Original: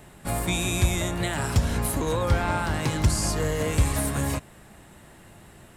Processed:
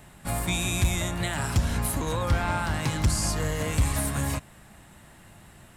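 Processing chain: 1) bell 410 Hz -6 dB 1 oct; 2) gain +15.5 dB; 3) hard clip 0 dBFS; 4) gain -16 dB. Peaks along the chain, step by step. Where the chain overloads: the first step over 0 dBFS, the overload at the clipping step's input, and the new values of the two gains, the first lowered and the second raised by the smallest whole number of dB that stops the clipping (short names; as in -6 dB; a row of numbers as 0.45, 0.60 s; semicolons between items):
-11.0, +4.5, 0.0, -16.0 dBFS; step 2, 4.5 dB; step 2 +10.5 dB, step 4 -11 dB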